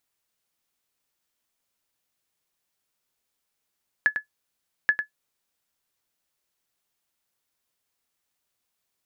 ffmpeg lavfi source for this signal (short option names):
-f lavfi -i "aevalsrc='0.316*(sin(2*PI*1710*mod(t,0.83))*exp(-6.91*mod(t,0.83)/0.11)+0.398*sin(2*PI*1710*max(mod(t,0.83)-0.1,0))*exp(-6.91*max(mod(t,0.83)-0.1,0)/0.11))':d=1.66:s=44100"